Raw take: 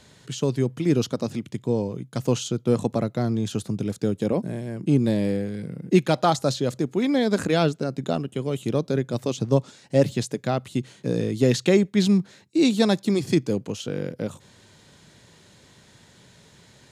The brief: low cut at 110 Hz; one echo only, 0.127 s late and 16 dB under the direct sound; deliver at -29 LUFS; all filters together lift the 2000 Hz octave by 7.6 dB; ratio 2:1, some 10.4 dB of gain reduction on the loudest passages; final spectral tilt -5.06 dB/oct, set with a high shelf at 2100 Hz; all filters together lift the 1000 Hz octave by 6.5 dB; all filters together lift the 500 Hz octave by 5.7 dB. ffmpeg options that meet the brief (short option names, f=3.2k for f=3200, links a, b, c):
-af "highpass=110,equalizer=f=500:t=o:g=5.5,equalizer=f=1k:t=o:g=4.5,equalizer=f=2k:t=o:g=4.5,highshelf=f=2.1k:g=6,acompressor=threshold=-28dB:ratio=2,aecho=1:1:127:0.158,volume=-1dB"